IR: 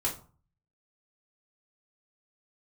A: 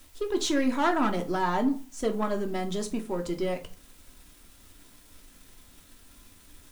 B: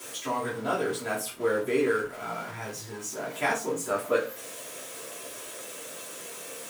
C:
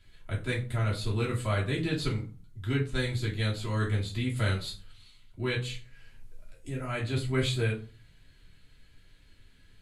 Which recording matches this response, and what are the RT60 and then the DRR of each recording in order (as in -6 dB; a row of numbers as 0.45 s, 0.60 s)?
C; 0.40 s, 0.40 s, 0.40 s; 4.0 dB, -11.0 dB, -6.0 dB